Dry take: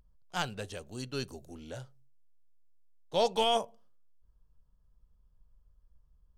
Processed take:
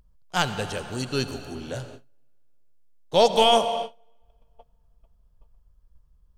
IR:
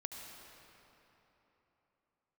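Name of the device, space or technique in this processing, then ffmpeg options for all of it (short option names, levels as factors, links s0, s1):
keyed gated reverb: -filter_complex "[0:a]asplit=3[s0][s1][s2];[1:a]atrim=start_sample=2205[s3];[s1][s3]afir=irnorm=-1:irlink=0[s4];[s2]apad=whole_len=281348[s5];[s4][s5]sidechaingate=range=0.0224:threshold=0.00178:ratio=16:detection=peak,volume=1.12[s6];[s0][s6]amix=inputs=2:normalize=0,volume=1.78"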